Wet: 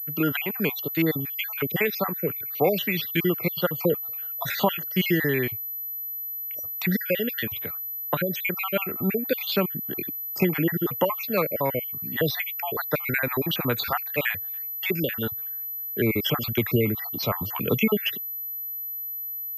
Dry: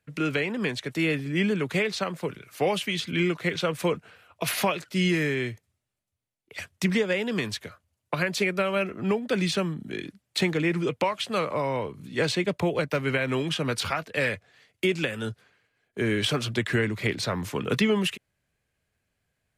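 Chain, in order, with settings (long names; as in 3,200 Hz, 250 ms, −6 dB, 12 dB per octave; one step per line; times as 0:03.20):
time-frequency cells dropped at random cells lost 52%
switching amplifier with a slow clock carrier 12,000 Hz
level +3.5 dB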